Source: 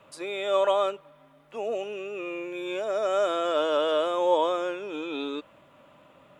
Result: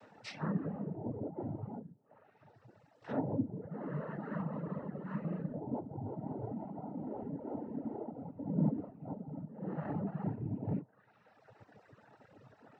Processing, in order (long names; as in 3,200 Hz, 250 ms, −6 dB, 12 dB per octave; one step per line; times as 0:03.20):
lower of the sound and its delayed copy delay 0.65 ms
treble cut that deepens with the level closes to 390 Hz, closed at −28.5 dBFS
wrong playback speed 15 ips tape played at 7.5 ips
dynamic equaliser 630 Hz, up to +5 dB, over −57 dBFS, Q 2.5
cochlear-implant simulation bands 12
reverb reduction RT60 1.5 s
level +1.5 dB